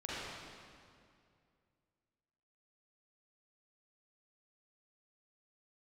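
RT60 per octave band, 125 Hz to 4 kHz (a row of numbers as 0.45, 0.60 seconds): 2.9, 2.6, 2.4, 2.2, 2.0, 1.8 seconds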